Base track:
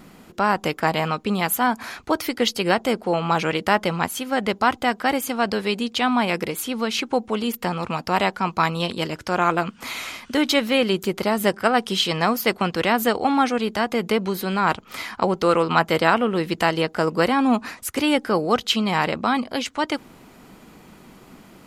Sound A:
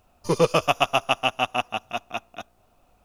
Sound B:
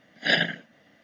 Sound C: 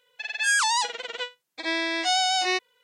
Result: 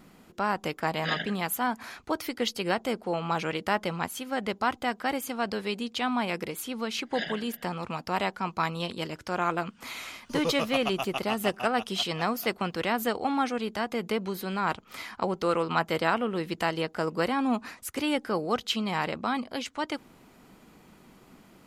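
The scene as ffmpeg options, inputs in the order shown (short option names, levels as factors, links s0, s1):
-filter_complex "[2:a]asplit=2[s0][s1];[0:a]volume=0.398[s2];[s1]asplit=2[s3][s4];[s4]adelay=314.9,volume=0.112,highshelf=f=4000:g=-7.08[s5];[s3][s5]amix=inputs=2:normalize=0[s6];[s0]atrim=end=1.03,asetpts=PTS-STARTPTS,volume=0.335,afade=t=in:d=0.004:c=hsin,afade=t=out:st=1.026:d=0.004:c=hsin,adelay=790[s7];[s6]atrim=end=1.03,asetpts=PTS-STARTPTS,volume=0.224,afade=t=in:d=0.004:c=hsin,afade=t=out:st=1.026:d=0.004:c=hsin,adelay=6890[s8];[1:a]atrim=end=3.04,asetpts=PTS-STARTPTS,volume=0.282,afade=t=in:d=0.004:c=hsin,afade=t=out:st=3.036:d=0.004:c=hsin,adelay=10050[s9];[s2][s7][s8][s9]amix=inputs=4:normalize=0"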